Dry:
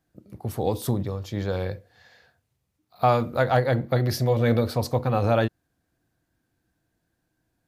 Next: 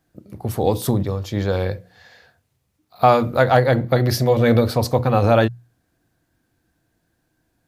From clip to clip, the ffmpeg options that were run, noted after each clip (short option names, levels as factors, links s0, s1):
-af "bandreject=f=60:t=h:w=6,bandreject=f=120:t=h:w=6,bandreject=f=180:t=h:w=6,volume=2.11"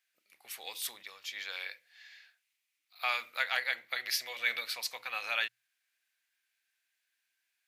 -af "highpass=f=2300:t=q:w=2.7,volume=0.422"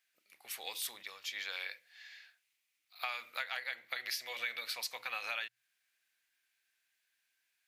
-af "acompressor=threshold=0.0158:ratio=6,volume=1.12"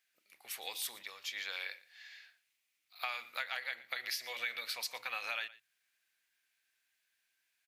-af "aecho=1:1:117:0.112"